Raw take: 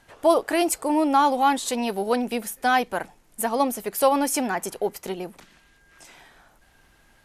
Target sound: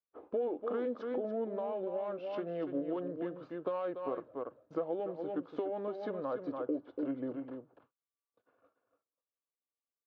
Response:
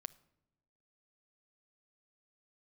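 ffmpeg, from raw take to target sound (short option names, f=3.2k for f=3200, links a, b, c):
-filter_complex "[0:a]adynamicsmooth=sensitivity=0.5:basefreq=2.1k,agate=range=-42dB:threshold=-50dB:ratio=16:detection=peak,equalizer=f=270:t=o:w=0.49:g=-9.5,alimiter=limit=-17.5dB:level=0:latency=1:release=11,asplit=2[a][b];[b]aecho=0:1:207:0.376[c];[a][c]amix=inputs=2:normalize=0,acompressor=threshold=-32dB:ratio=6,highpass=190,equalizer=f=210:t=q:w=4:g=-7,equalizer=f=390:t=q:w=4:g=6,equalizer=f=680:t=q:w=4:g=7,equalizer=f=1.7k:t=q:w=4:g=3,equalizer=f=3.2k:t=q:w=4:g=-6,lowpass=f=5.3k:w=0.5412,lowpass=f=5.3k:w=1.3066,asetrate=31752,aresample=44100,bandreject=f=1.9k:w=6.9,volume=-4.5dB"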